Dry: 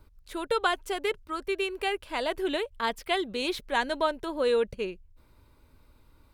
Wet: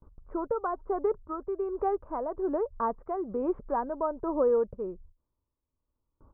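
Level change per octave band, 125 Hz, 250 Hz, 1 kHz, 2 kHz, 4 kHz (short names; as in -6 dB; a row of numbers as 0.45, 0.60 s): n/a, +1.0 dB, -1.5 dB, -19.0 dB, under -40 dB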